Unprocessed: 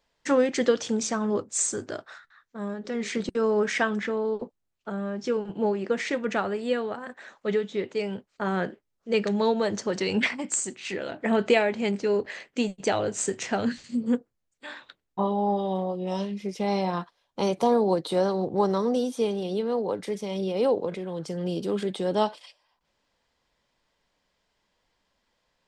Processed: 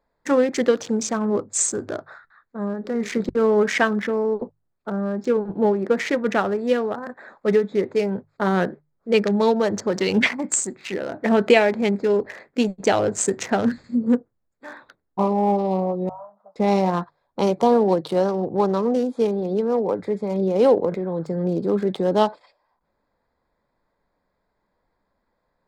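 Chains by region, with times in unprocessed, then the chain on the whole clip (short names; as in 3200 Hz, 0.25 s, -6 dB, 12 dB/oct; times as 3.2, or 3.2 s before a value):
16.09–16.56 elliptic band-pass 630–1300 Hz + compressor, threshold -39 dBFS
whole clip: Wiener smoothing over 15 samples; notches 50/100/150 Hz; vocal rider 2 s; gain +5.5 dB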